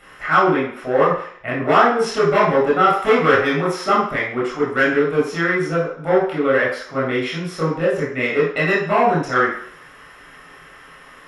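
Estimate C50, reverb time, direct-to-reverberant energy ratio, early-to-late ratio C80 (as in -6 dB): 3.0 dB, 0.55 s, -7.0 dB, 7.5 dB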